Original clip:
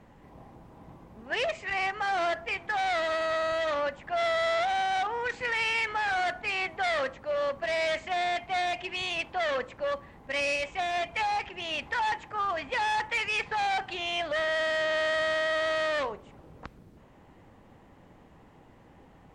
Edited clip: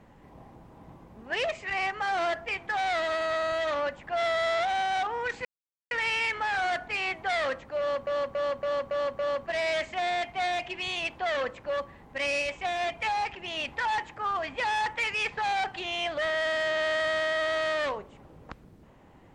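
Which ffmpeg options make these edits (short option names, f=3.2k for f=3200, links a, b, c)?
-filter_complex "[0:a]asplit=7[a][b][c][d][e][f][g];[a]atrim=end=5.45,asetpts=PTS-STARTPTS,afade=t=out:st=5.446:d=0.004:c=hsin,apad=pad_dur=0.46[h];[b]atrim=start=5.45:end=7.612,asetpts=PTS-STARTPTS,afade=t=in:d=0.004:c=hsin[i];[c]atrim=start=7.328:end=7.612[j];[d]atrim=start=7.328:end=7.612[k];[e]atrim=start=7.328:end=7.612[l];[f]atrim=start=7.328:end=7.612[m];[g]atrim=start=7.328[n];[h][i]concat=n=2:v=0:a=1[o];[o][j]acrossfade=d=0.004:c1=hsin:c2=hsin[p];[p][k]acrossfade=d=0.004:c1=hsin:c2=hsin[q];[q][l]acrossfade=d=0.004:c1=hsin:c2=hsin[r];[r][m]acrossfade=d=0.004:c1=hsin:c2=hsin[s];[s][n]acrossfade=d=0.004:c1=hsin:c2=hsin"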